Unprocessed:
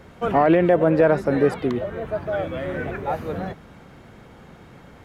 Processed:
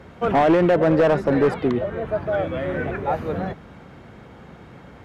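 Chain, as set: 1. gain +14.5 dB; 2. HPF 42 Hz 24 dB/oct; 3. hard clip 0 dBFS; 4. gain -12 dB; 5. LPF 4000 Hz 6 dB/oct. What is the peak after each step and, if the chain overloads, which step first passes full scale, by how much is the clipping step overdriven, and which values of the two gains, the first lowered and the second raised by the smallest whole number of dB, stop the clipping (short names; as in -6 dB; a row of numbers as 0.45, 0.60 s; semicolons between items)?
+8.5, +9.0, 0.0, -12.0, -12.0 dBFS; step 1, 9.0 dB; step 1 +5.5 dB, step 4 -3 dB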